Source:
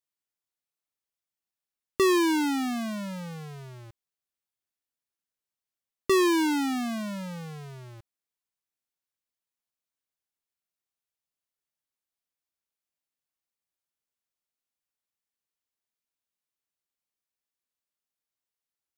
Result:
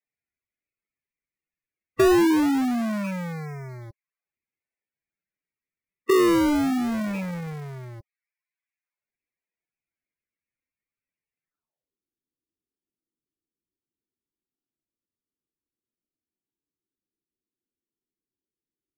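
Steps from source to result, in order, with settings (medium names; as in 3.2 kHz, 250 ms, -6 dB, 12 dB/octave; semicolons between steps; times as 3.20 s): rattle on loud lows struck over -35 dBFS, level -31 dBFS; low-pass sweep 2.3 kHz -> 340 Hz, 11.42–11.98 s; loudest bins only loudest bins 16; low-pass that closes with the level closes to 1 kHz, closed at -26 dBFS; in parallel at -4 dB: decimation with a swept rate 31×, swing 160% 0.21 Hz; on the sum: trim +2 dB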